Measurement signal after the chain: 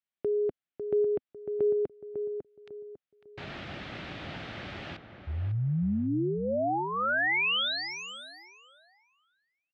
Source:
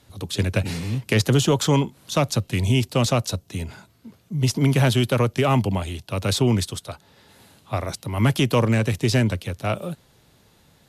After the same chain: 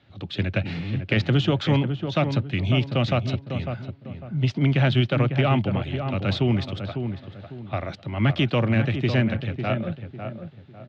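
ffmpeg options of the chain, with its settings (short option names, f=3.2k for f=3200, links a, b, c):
-filter_complex "[0:a]highpass=100,equalizer=f=250:t=q:w=4:g=-3,equalizer=f=450:t=q:w=4:g=-8,equalizer=f=1k:t=q:w=4:g=-9,lowpass=f=3.5k:w=0.5412,lowpass=f=3.5k:w=1.3066,asplit=2[a][b];[b]adelay=550,lowpass=f=1.4k:p=1,volume=-7dB,asplit=2[c][d];[d]adelay=550,lowpass=f=1.4k:p=1,volume=0.34,asplit=2[e][f];[f]adelay=550,lowpass=f=1.4k:p=1,volume=0.34,asplit=2[g][h];[h]adelay=550,lowpass=f=1.4k:p=1,volume=0.34[i];[c][e][g][i]amix=inputs=4:normalize=0[j];[a][j]amix=inputs=2:normalize=0"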